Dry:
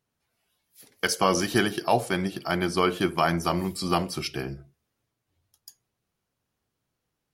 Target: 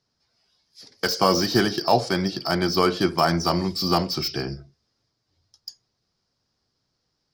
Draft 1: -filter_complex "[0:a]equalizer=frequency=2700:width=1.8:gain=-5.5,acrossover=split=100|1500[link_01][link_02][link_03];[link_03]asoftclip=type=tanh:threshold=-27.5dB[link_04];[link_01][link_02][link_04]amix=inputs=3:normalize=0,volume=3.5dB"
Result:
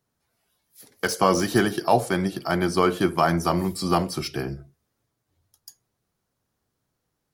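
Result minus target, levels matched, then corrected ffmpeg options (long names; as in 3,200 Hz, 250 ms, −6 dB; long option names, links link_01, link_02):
4,000 Hz band −6.5 dB
-filter_complex "[0:a]lowpass=frequency=5000:width_type=q:width=6.1,equalizer=frequency=2700:width=1.8:gain=-5.5,acrossover=split=100|1500[link_01][link_02][link_03];[link_03]asoftclip=type=tanh:threshold=-27.5dB[link_04];[link_01][link_02][link_04]amix=inputs=3:normalize=0,volume=3.5dB"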